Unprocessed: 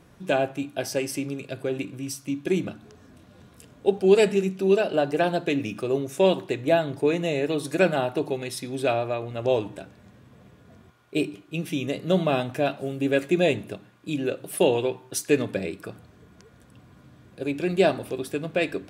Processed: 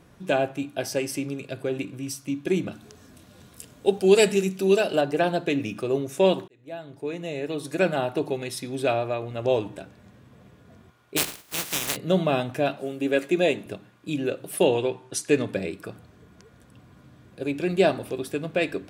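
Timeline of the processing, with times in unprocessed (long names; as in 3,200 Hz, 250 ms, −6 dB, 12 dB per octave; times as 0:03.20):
0:02.72–0:05.01: high-shelf EQ 3,900 Hz +11 dB
0:06.48–0:08.18: fade in linear
0:11.16–0:11.95: compressing power law on the bin magnitudes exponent 0.18
0:12.79–0:13.66: high-pass filter 210 Hz
0:14.65–0:15.51: low-pass filter 11,000 Hz 24 dB per octave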